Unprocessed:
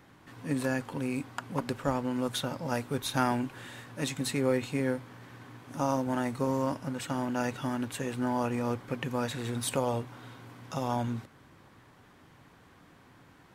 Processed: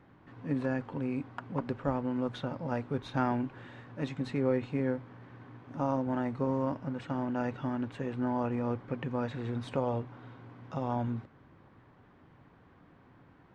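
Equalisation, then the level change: tape spacing loss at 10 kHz 32 dB; 0.0 dB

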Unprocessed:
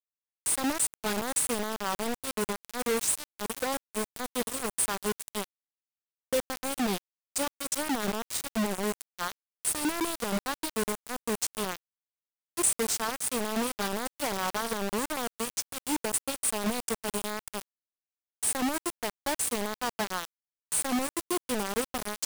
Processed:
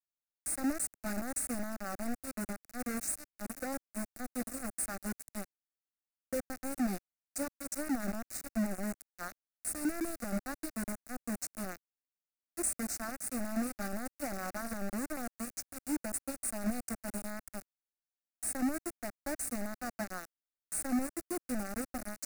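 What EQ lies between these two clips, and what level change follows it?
bass shelf 380 Hz +8 dB; static phaser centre 650 Hz, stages 8; -7.0 dB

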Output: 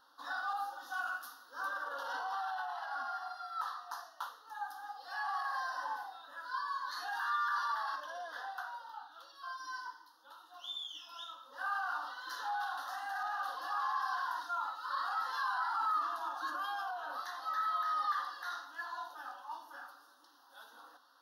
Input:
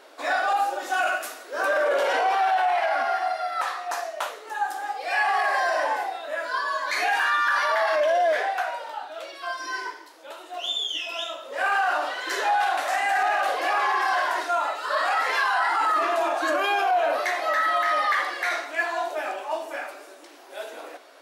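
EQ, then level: peaking EQ 550 Hz +5.5 dB 0.24 oct; static phaser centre 940 Hz, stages 4; static phaser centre 2.3 kHz, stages 6; -8.0 dB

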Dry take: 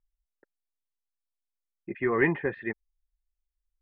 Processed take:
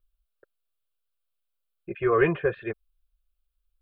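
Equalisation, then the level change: static phaser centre 1.3 kHz, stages 8; +7.5 dB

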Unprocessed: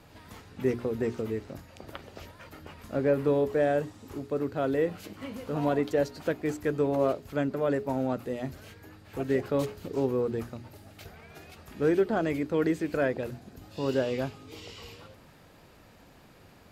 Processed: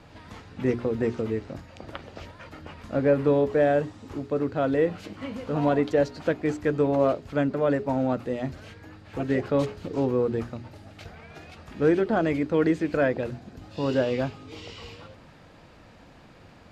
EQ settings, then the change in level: distance through air 73 m; band-stop 400 Hz, Q 13; +4.5 dB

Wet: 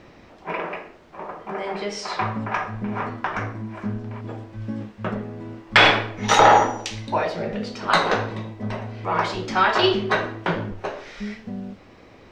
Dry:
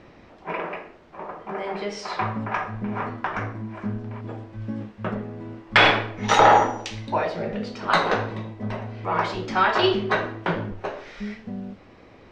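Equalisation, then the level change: treble shelf 6.1 kHz +9 dB; +1.0 dB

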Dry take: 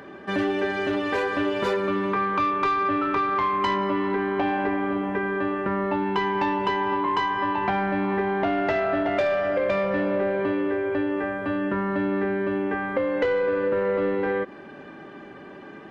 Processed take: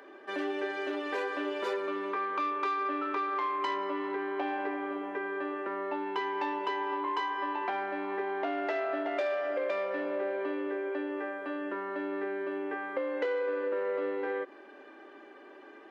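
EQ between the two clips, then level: steep high-pass 290 Hz 36 dB/octave; -8.0 dB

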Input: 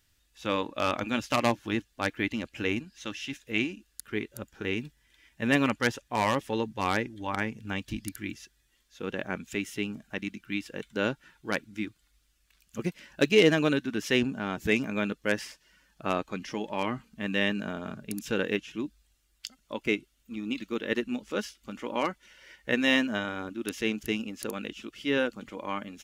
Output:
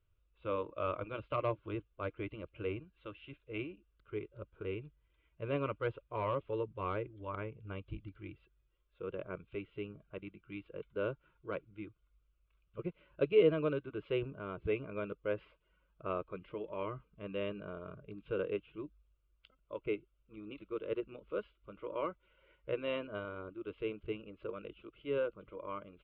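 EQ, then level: distance through air 310 m; tape spacing loss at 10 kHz 35 dB; static phaser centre 1.2 kHz, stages 8; -1.5 dB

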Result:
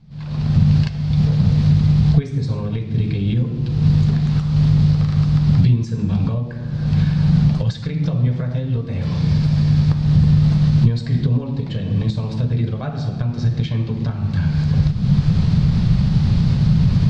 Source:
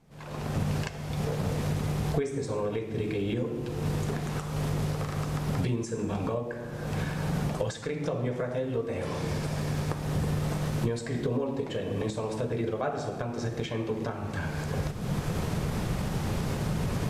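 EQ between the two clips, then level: resonant low-pass 4.4 kHz, resonance Q 3.4; resonant low shelf 250 Hz +14 dB, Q 1.5; 0.0 dB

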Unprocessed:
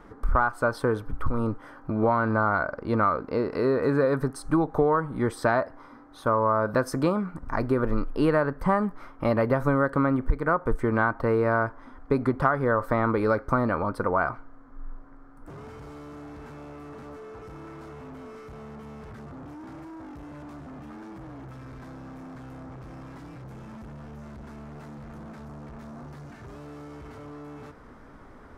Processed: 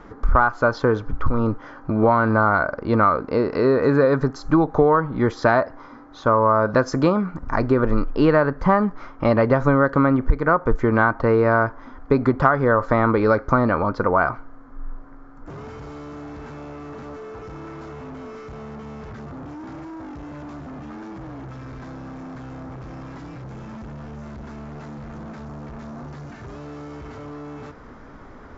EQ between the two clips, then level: brick-wall FIR low-pass 7.5 kHz; +6.0 dB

